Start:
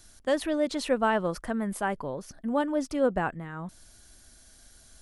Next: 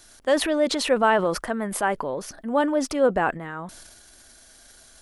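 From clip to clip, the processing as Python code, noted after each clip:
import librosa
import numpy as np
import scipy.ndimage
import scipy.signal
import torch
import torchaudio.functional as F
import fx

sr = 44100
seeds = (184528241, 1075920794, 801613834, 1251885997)

y = fx.transient(x, sr, attack_db=-1, sustain_db=7)
y = fx.bass_treble(y, sr, bass_db=-10, treble_db=-3)
y = F.gain(torch.from_numpy(y), 6.5).numpy()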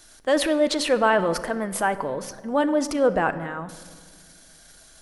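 y = fx.room_shoebox(x, sr, seeds[0], volume_m3=2300.0, walls='mixed', distance_m=0.55)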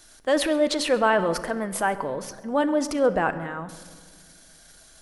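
y = x + 10.0 ** (-22.5 / 20.0) * np.pad(x, (int(133 * sr / 1000.0), 0))[:len(x)]
y = F.gain(torch.from_numpy(y), -1.0).numpy()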